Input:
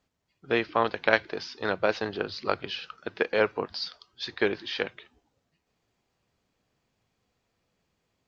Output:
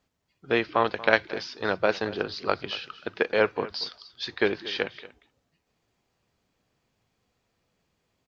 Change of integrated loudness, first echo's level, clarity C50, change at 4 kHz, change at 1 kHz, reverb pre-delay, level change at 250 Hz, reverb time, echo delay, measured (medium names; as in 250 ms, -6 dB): +1.5 dB, -18.0 dB, no reverb, +1.5 dB, +1.5 dB, no reverb, +1.5 dB, no reverb, 234 ms